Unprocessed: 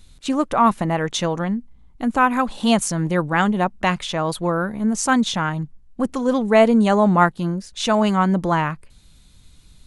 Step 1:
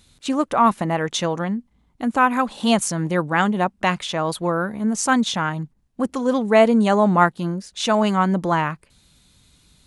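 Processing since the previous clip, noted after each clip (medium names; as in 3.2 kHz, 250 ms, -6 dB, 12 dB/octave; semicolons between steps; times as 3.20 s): high-pass 130 Hz 6 dB/octave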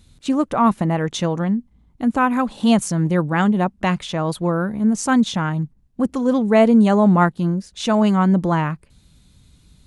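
bass shelf 320 Hz +11 dB; trim -3 dB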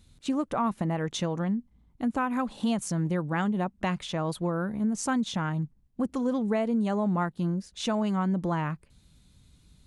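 compression 6:1, threshold -17 dBFS, peak gain reduction 9 dB; trim -6.5 dB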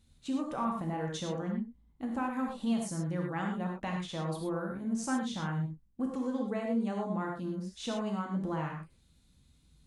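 gated-style reverb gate 140 ms flat, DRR 0 dB; trim -9 dB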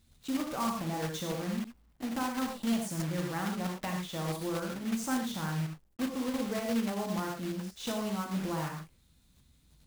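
block-companded coder 3-bit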